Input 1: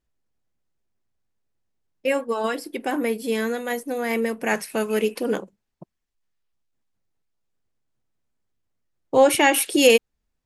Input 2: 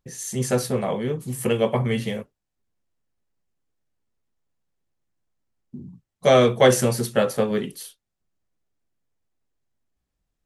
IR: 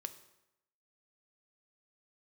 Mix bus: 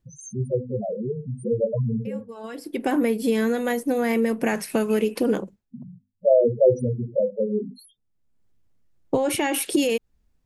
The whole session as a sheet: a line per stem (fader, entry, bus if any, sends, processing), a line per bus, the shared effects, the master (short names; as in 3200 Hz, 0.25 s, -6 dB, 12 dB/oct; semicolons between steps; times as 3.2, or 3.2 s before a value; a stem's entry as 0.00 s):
+2.5 dB, 0.00 s, no send, limiter -12 dBFS, peak gain reduction 8.5 dB; compressor, threshold -25 dBFS, peak gain reduction 9 dB; low shelf 360 Hz +9.5 dB; auto duck -19 dB, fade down 0.20 s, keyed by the second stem
+1.0 dB, 0.00 s, no send, notches 50/100/150/200/250/300/350/400/450 Hz; loudest bins only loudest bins 4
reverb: off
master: dry